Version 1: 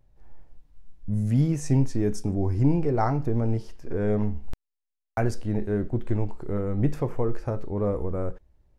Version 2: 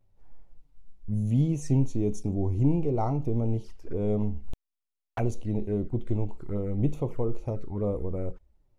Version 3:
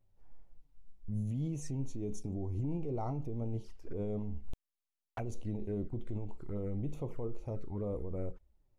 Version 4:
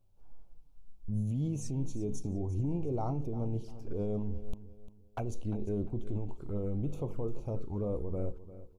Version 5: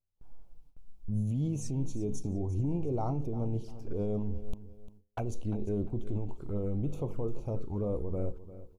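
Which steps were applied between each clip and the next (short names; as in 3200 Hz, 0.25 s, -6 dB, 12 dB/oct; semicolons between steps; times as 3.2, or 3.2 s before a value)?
notch 1700 Hz, Q 9.1; envelope flanger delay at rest 11.4 ms, full sweep at -22 dBFS; gain -2 dB
limiter -23.5 dBFS, peak gain reduction 10.5 dB; gain -5.5 dB
bell 1900 Hz -14 dB 0.33 oct; feedback echo 0.349 s, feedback 31%, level -15 dB; gain +3 dB
gate with hold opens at -48 dBFS; gain +1.5 dB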